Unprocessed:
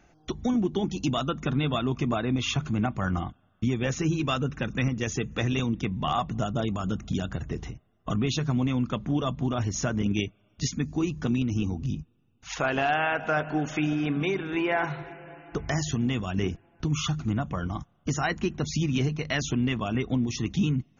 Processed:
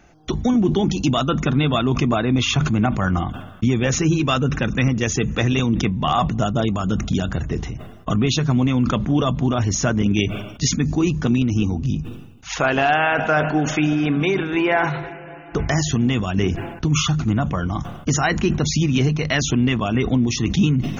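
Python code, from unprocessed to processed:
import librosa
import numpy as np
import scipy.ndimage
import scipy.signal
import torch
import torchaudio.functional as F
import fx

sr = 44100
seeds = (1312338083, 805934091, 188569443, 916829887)

y = fx.sustainer(x, sr, db_per_s=61.0)
y = F.gain(torch.from_numpy(y), 7.5).numpy()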